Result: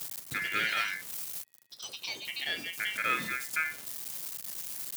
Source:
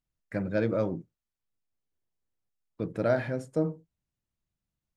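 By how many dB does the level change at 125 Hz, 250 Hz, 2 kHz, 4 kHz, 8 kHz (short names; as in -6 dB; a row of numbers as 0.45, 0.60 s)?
-18.0 dB, -16.0 dB, +11.5 dB, +21.5 dB, n/a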